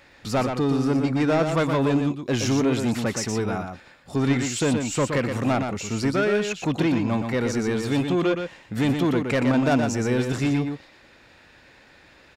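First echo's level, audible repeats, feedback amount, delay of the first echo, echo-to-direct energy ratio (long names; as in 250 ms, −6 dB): −6.0 dB, 1, repeats not evenly spaced, 120 ms, −6.0 dB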